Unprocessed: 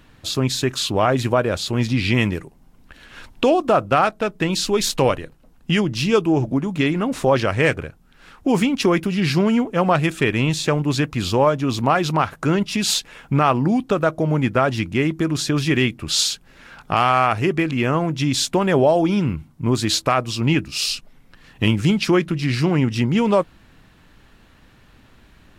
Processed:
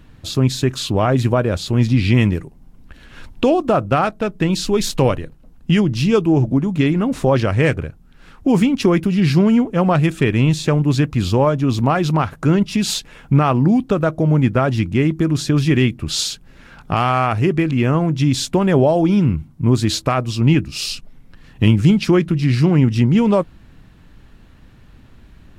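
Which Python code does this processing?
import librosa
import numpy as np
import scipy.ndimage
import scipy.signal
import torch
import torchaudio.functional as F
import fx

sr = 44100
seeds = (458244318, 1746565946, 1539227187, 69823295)

y = fx.low_shelf(x, sr, hz=310.0, db=10.0)
y = y * librosa.db_to_amplitude(-2.0)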